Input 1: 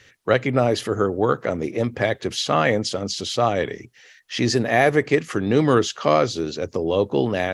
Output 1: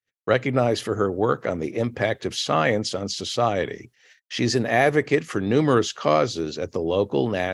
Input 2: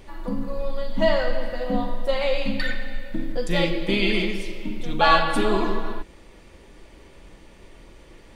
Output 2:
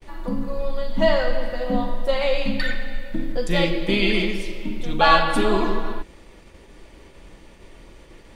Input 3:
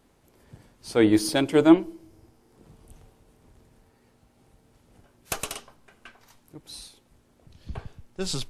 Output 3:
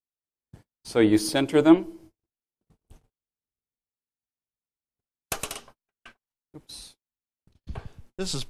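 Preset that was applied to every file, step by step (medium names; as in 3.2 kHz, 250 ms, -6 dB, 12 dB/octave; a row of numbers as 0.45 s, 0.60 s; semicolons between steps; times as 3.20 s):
gate -48 dBFS, range -45 dB; normalise loudness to -23 LUFS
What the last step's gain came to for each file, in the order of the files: -1.5 dB, +1.5 dB, -0.5 dB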